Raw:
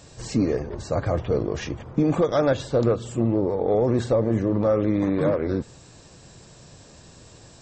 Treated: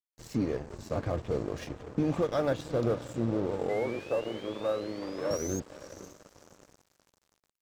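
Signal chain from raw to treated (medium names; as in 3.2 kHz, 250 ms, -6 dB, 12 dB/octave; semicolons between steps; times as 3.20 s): 3.69–5.60 s: painted sound rise 2–6.6 kHz -33 dBFS; 3.69–5.31 s: three-band isolator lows -18 dB, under 330 Hz, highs -16 dB, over 2.3 kHz; on a send: echo that smears into a reverb 545 ms, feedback 56%, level -12 dB; on the sum: crossover distortion -37 dBFS; trim -7 dB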